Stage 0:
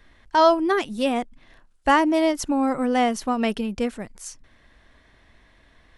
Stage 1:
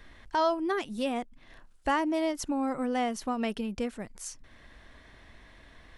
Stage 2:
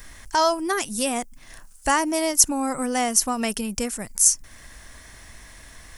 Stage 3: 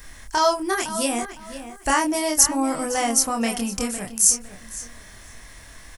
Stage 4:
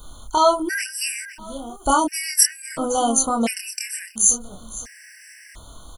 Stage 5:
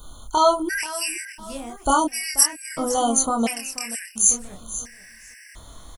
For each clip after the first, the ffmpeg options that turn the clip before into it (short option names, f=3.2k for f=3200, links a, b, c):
-af "acompressor=threshold=-49dB:ratio=1.5,volume=2.5dB"
-af "equalizer=f=360:t=o:w=2.1:g=-5.5,aexciter=amount=7.1:drive=4.3:freq=5.3k,volume=8.5dB"
-filter_complex "[0:a]asplit=2[a][b];[b]adelay=26,volume=-3dB[c];[a][c]amix=inputs=2:normalize=0,asplit=2[d][e];[e]adelay=509,lowpass=f=4.1k:p=1,volume=-12dB,asplit=2[f][g];[g]adelay=509,lowpass=f=4.1k:p=1,volume=0.25,asplit=2[h][i];[i]adelay=509,lowpass=f=4.1k:p=1,volume=0.25[j];[d][f][h][j]amix=inputs=4:normalize=0,volume=-1dB"
-af "afftfilt=real='re*gt(sin(2*PI*0.72*pts/sr)*(1-2*mod(floor(b*sr/1024/1500),2)),0)':imag='im*gt(sin(2*PI*0.72*pts/sr)*(1-2*mod(floor(b*sr/1024/1500),2)),0)':win_size=1024:overlap=0.75,volume=3.5dB"
-af "aecho=1:1:484:0.141,volume=-1dB"